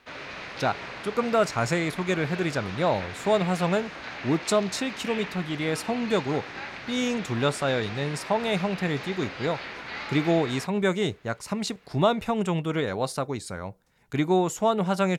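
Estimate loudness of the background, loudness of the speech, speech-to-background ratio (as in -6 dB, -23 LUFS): -37.0 LUFS, -27.0 LUFS, 10.0 dB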